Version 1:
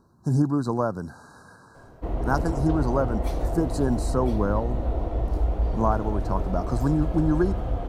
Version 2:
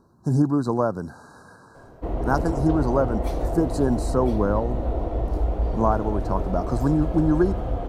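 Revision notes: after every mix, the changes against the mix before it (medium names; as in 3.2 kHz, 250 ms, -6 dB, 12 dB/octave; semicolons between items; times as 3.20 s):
master: add peaking EQ 460 Hz +3.5 dB 2.2 oct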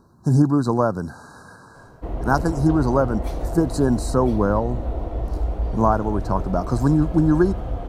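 speech +5.5 dB; master: add peaking EQ 460 Hz -3.5 dB 2.2 oct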